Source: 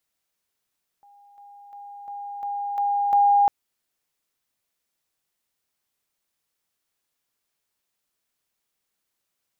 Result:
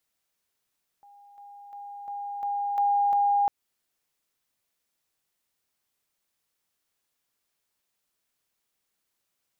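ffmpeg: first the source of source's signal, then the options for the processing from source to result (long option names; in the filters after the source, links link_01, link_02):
-f lavfi -i "aevalsrc='pow(10,(-50+6*floor(t/0.35))/20)*sin(2*PI*811*t)':duration=2.45:sample_rate=44100"
-af "alimiter=limit=-19.5dB:level=0:latency=1:release=160"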